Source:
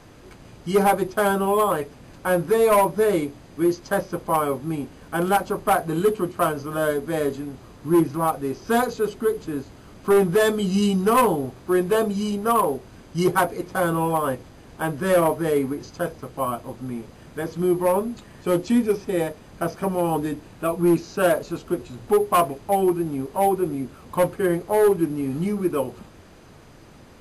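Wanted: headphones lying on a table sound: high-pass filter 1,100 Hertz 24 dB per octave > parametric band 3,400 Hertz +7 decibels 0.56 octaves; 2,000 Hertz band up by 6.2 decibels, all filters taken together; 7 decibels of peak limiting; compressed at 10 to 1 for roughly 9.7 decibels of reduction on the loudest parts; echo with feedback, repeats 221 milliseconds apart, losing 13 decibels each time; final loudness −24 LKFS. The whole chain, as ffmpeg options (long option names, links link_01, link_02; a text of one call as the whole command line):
ffmpeg -i in.wav -af "equalizer=frequency=2000:width_type=o:gain=8,acompressor=threshold=-23dB:ratio=10,alimiter=limit=-19.5dB:level=0:latency=1,highpass=frequency=1100:width=0.5412,highpass=frequency=1100:width=1.3066,equalizer=frequency=3400:width_type=o:width=0.56:gain=7,aecho=1:1:221|442|663:0.224|0.0493|0.0108,volume=12.5dB" out.wav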